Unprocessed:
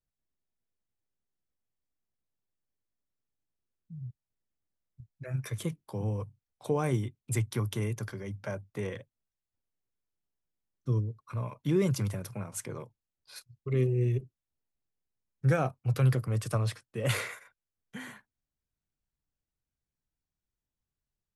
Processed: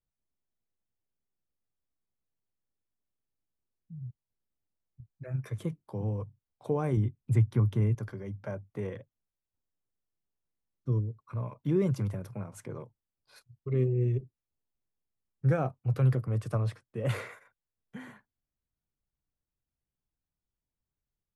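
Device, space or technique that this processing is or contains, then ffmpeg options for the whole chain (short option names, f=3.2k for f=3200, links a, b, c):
through cloth: -filter_complex "[0:a]highshelf=f=2.1k:g=-13.5,asettb=1/sr,asplit=3[a][b][c];[a]atrim=end=6.974[d];[b]atrim=start=6.97:end=7.95,asetpts=PTS-STARTPTS,afade=t=in:d=0.004:c=qsin,afade=t=out:st=0.976:d=0.004:c=qsin,bass=f=250:g=7,treble=f=4k:g=-5[e];[c]atrim=start=7.946[f];[d][e]acrossfade=d=0.004:c1=hsin:c2=qsin[g];[g][f]acrossfade=d=0.004:c1=qsin:c2=hsin"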